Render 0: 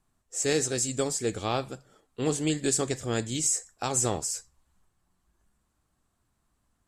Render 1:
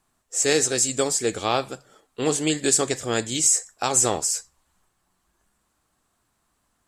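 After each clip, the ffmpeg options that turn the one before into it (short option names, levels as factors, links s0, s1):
-af "lowshelf=f=230:g=-11,volume=2.37"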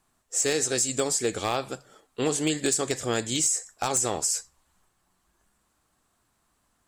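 -af "acompressor=threshold=0.0891:ratio=8,aeval=exprs='0.178*(abs(mod(val(0)/0.178+3,4)-2)-1)':c=same"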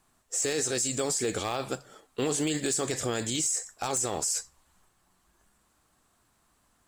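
-filter_complex "[0:a]asplit=2[s0][s1];[s1]acrusher=bits=4:mode=log:mix=0:aa=0.000001,volume=0.316[s2];[s0][s2]amix=inputs=2:normalize=0,alimiter=limit=0.1:level=0:latency=1:release=19"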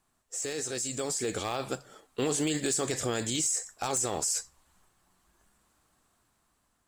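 -af "dynaudnorm=f=340:g=7:m=1.88,volume=0.501"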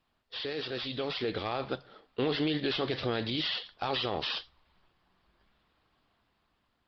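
-af "acrusher=samples=4:mix=1:aa=0.000001,aresample=11025,aresample=44100" -ar 48000 -c:a libopus -b:a 24k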